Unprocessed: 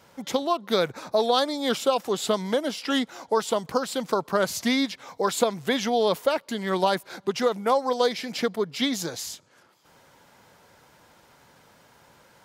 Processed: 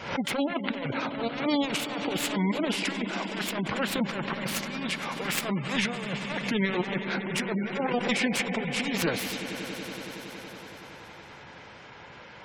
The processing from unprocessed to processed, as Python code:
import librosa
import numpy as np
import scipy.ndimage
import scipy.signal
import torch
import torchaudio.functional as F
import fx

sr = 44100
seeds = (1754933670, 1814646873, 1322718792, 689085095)

y = fx.self_delay(x, sr, depth_ms=0.65)
y = fx.lowpass(y, sr, hz=3800.0, slope=6)
y = fx.peak_eq(y, sr, hz=2400.0, db=7.5, octaves=0.93)
y = fx.over_compress(y, sr, threshold_db=-30.0, ratio=-0.5)
y = fx.echo_swell(y, sr, ms=93, loudest=5, wet_db=-14.0)
y = fx.spec_gate(y, sr, threshold_db=-25, keep='strong')
y = fx.pre_swell(y, sr, db_per_s=86.0)
y = y * 10.0 ** (1.0 / 20.0)